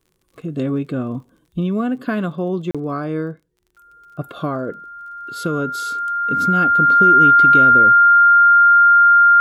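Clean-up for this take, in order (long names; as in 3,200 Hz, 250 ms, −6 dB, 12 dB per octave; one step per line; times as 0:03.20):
click removal
notch filter 1,400 Hz, Q 30
repair the gap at 0:02.71, 36 ms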